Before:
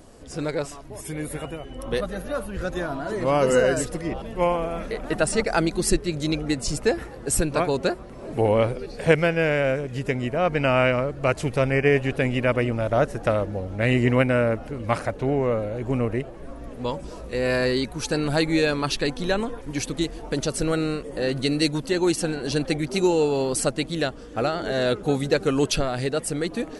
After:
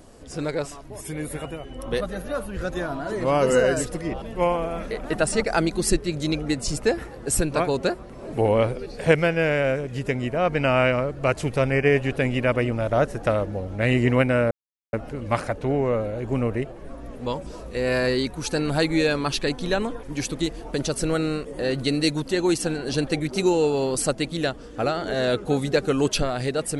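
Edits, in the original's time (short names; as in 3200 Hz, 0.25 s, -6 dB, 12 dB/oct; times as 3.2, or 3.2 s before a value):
14.51 insert silence 0.42 s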